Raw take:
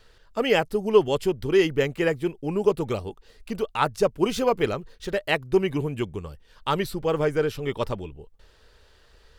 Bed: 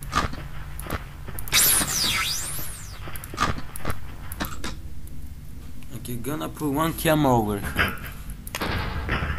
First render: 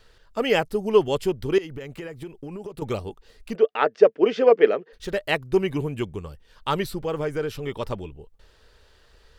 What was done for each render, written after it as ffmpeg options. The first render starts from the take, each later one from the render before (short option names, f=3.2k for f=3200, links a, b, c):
-filter_complex "[0:a]asettb=1/sr,asplit=3[a][b][c];[a]atrim=end=1.584[d];[b]atrim=start=1.58:end=2.82,asetpts=PTS-STARTPTS,afade=t=in:d=0.004:c=qsin,afade=t=out:st=1.236:d=0.004:c=qsin,acompressor=threshold=-31dB:ratio=20:attack=3.2:release=140:knee=1:detection=peak[e];[c]atrim=start=2.816[f];[d][e]acrossfade=d=0.004:c1=hsin:c2=qsin[g];[g][f]acrossfade=d=0.004:c1=qsin:c2=hsin,asplit=3[h][i][j];[h]afade=t=out:st=3.54:d=0.02[k];[i]highpass=f=230:w=0.5412,highpass=f=230:w=1.3066,equalizer=f=450:t=q:w=4:g=10,equalizer=f=640:t=q:w=4:g=5,equalizer=f=990:t=q:w=4:g=-4,equalizer=f=1.8k:t=q:w=4:g=7,equalizer=f=4k:t=q:w=4:g=-8,lowpass=f=4.4k:w=0.5412,lowpass=f=4.4k:w=1.3066,afade=t=in:st=3.54:d=0.02,afade=t=out:st=4.92:d=0.02[l];[j]afade=t=in:st=4.92:d=0.02[m];[k][l][m]amix=inputs=3:normalize=0,asettb=1/sr,asplit=3[n][o][p];[n]atrim=end=7.044[q];[o]atrim=start=7.04:end=7.91,asetpts=PTS-STARTPTS,afade=t=in:d=0.004:c=qsin,afade=t=out:st=0.866:d=0.004:c=qsin,acompressor=threshold=-28dB:ratio=1.5:attack=3.2:release=140:knee=1:detection=peak[r];[p]atrim=start=7.906[s];[q][r]acrossfade=d=0.004:c1=hsin:c2=qsin[t];[t][s]acrossfade=d=0.004:c1=qsin:c2=hsin"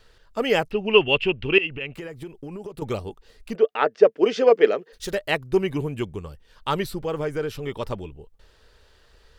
-filter_complex "[0:a]asettb=1/sr,asplit=3[a][b][c];[a]atrim=end=0.714[d];[b]atrim=start=0.71:end=1.94,asetpts=PTS-STARTPTS,afade=t=in:d=0.004:c=qsin,afade=t=out:st=1.226:d=0.004:c=qsin,lowpass=f=2.7k:t=q:w=14[e];[c]atrim=start=1.936[f];[d][e]acrossfade=d=0.004:c1=hsin:c2=qsin[g];[g][f]acrossfade=d=0.004:c1=qsin:c2=hsin,asettb=1/sr,asplit=3[h][i][j];[h]atrim=end=4.164[k];[i]atrim=start=4.16:end=5.15,asetpts=PTS-STARTPTS,afade=t=in:d=0.004:c=qsin,afade=t=out:st=0.986:d=0.004:c=qsin,bass=f=250:g=-1,treble=f=4k:g=10[l];[j]atrim=start=5.146[m];[k][l]acrossfade=d=0.004:c1=hsin:c2=qsin[n];[n][m]acrossfade=d=0.004:c1=qsin:c2=hsin"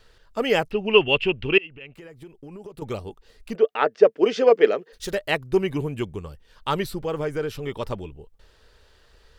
-filter_complex "[0:a]asplit=2[a][b];[a]atrim=end=1.58,asetpts=PTS-STARTPTS,afade=t=out:st=1.576:d=0.004:c=hsin:silence=0.237137[c];[b]atrim=start=1.58,asetpts=PTS-STARTPTS,afade=t=in:d=2.06:silence=0.237137[d];[c][d]concat=n=2:v=0:a=1"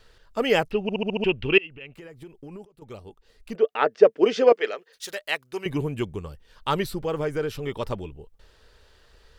-filter_complex "[0:a]asettb=1/sr,asplit=3[a][b][c];[a]atrim=end=4.524[d];[b]atrim=start=4.52:end=5.66,asetpts=PTS-STARTPTS,afade=t=in:d=0.004:c=qsin,afade=t=out:st=1.136:d=0.004:c=qsin,highpass=f=1.5k:p=1[e];[c]atrim=start=5.656[f];[d][e]acrossfade=d=0.004:c1=hsin:c2=qsin[g];[g][f]acrossfade=d=0.004:c1=qsin:c2=hsin,asplit=8[h][i][j][k][l][m][n][o];[h]atrim=end=0.892[p];[i]atrim=start=0.818:end=0.892[q];[j]atrim=start=0.818:end=0.892[r];[k]atrim=start=0.818:end=0.892[s];[l]atrim=start=0.818:end=0.892[t];[m]atrim=start=0.818:end=0.892[u];[n]atrim=start=1.238:end=2.65,asetpts=PTS-STARTPTS,afade=t=out:st=1.408:d=0.004:c=hsin:silence=0.112202[v];[o]atrim=start=2.65,asetpts=PTS-STARTPTS,afade=t=in:d=1.29:silence=0.112202[w];[p][q]acrossfade=d=0.004:c1=hsin:c2=hsin[x];[x][r]acrossfade=d=0.004:c1=hsin:c2=hsin[y];[y][s]acrossfade=d=0.004:c1=hsin:c2=hsin[z];[z][t]acrossfade=d=0.004:c1=hsin:c2=hsin[aa];[aa][u]acrossfade=d=0.004:c1=hsin:c2=hsin[ab];[v][w]concat=n=2:v=0:a=1[ac];[ab][ac]acrossfade=d=0.004:c1=hsin:c2=hsin"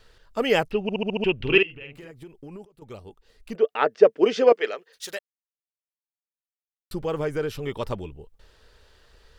-filter_complex "[0:a]asettb=1/sr,asplit=3[a][b][c];[a]atrim=end=1.354[d];[b]atrim=start=1.35:end=2.11,asetpts=PTS-STARTPTS,afade=t=in:d=0.004:c=qsin,afade=t=out:st=0.756:d=0.004:c=qsin,asplit=2[e][f];[f]adelay=49,volume=-5dB[g];[e][g]amix=inputs=2:normalize=0,atrim=end_sample=33516[h];[c]atrim=start=2.106[i];[d][h]acrossfade=d=0.004:c1=hsin:c2=qsin[j];[j][i]acrossfade=d=0.004:c1=qsin:c2=hsin,asplit=3[k][l][m];[k]atrim=end=5.19,asetpts=PTS-STARTPTS,afade=t=out:st=5.186:d=0.004:c=hsin[n];[l]atrim=start=5.19:end=6.91,asetpts=PTS-STARTPTS,volume=0[o];[m]atrim=start=6.91,asetpts=PTS-STARTPTS,afade=t=in:d=0.004:c=hsin[p];[n][o][p]concat=n=3:v=0:a=1"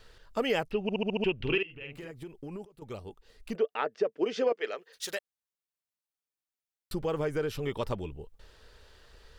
-af "alimiter=limit=-12dB:level=0:latency=1:release=408,acompressor=threshold=-33dB:ratio=1.5"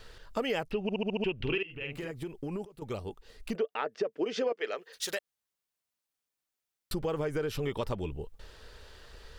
-filter_complex "[0:a]asplit=2[a][b];[b]alimiter=level_in=3.5dB:limit=-24dB:level=0:latency=1:release=144,volume=-3.5dB,volume=-2.5dB[c];[a][c]amix=inputs=2:normalize=0,acompressor=threshold=-31dB:ratio=2"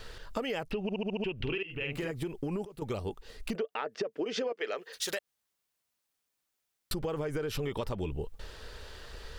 -filter_complex "[0:a]asplit=2[a][b];[b]alimiter=level_in=4.5dB:limit=-24dB:level=0:latency=1:release=22,volume=-4.5dB,volume=-2dB[c];[a][c]amix=inputs=2:normalize=0,acompressor=threshold=-30dB:ratio=6"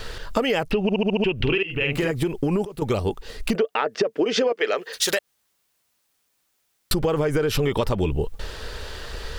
-af "volume=12dB"